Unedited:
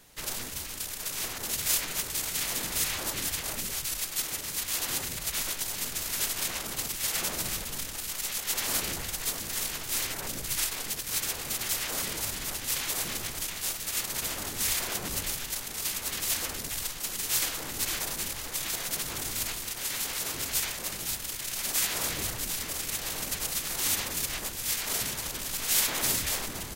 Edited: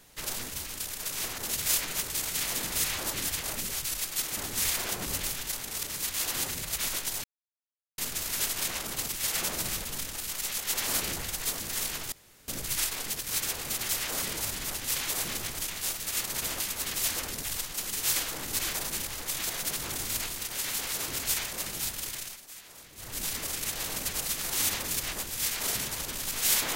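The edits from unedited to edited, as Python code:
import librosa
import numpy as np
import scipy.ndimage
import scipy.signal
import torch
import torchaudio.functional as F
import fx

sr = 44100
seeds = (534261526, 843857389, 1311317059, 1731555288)

y = fx.edit(x, sr, fx.insert_silence(at_s=5.78, length_s=0.74),
    fx.room_tone_fill(start_s=9.92, length_s=0.36),
    fx.move(start_s=14.4, length_s=1.46, to_s=4.37),
    fx.fade_down_up(start_s=21.38, length_s=1.12, db=-19.0, fade_s=0.28), tone=tone)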